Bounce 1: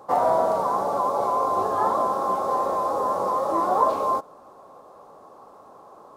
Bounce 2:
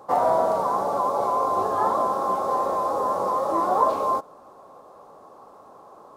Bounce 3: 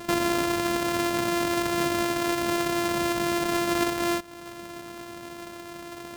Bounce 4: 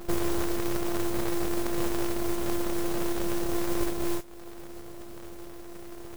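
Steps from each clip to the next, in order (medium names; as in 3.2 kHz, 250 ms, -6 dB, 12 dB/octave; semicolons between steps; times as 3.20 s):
no audible change
sorted samples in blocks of 128 samples; compression 3:1, threshold -34 dBFS, peak gain reduction 14.5 dB; trim +7.5 dB
modulation noise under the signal 15 dB; full-wave rectifier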